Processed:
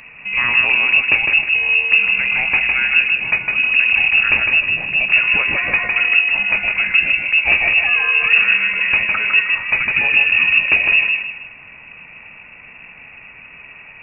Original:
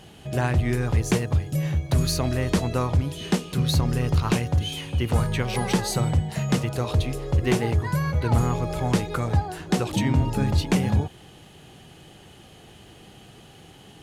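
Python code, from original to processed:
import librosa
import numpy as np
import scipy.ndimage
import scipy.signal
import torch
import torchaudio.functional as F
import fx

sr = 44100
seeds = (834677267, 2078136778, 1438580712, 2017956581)

p1 = np.clip(x, -10.0 ** (-28.0 / 20.0), 10.0 ** (-28.0 / 20.0))
p2 = x + F.gain(torch.from_numpy(p1), -4.0).numpy()
p3 = fx.echo_feedback(p2, sr, ms=156, feedback_pct=34, wet_db=-4.0)
p4 = fx.freq_invert(p3, sr, carrier_hz=2700)
y = F.gain(torch.from_numpy(p4), 3.5).numpy()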